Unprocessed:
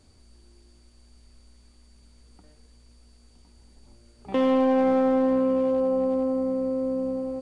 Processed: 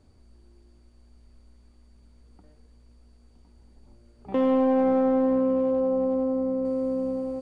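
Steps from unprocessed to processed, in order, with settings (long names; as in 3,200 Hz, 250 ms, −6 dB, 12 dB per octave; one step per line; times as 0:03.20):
high-shelf EQ 2,200 Hz −12 dB, from 0:06.65 −2 dB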